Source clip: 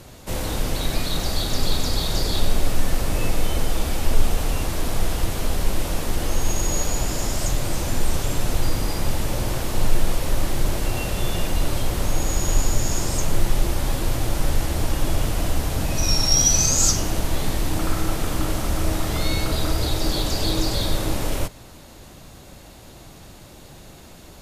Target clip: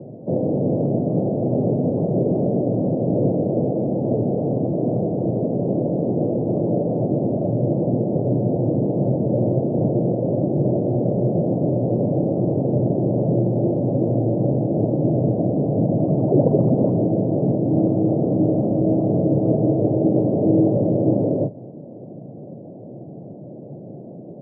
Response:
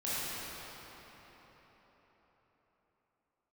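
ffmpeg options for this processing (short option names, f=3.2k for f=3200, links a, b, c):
-filter_complex "[0:a]asplit=2[a][b];[b]acrusher=samples=15:mix=1:aa=0.000001:lfo=1:lforange=15:lforate=2.4,volume=-5dB[c];[a][c]amix=inputs=2:normalize=0,asuperpass=centerf=280:order=12:qfactor=0.52,volume=7.5dB"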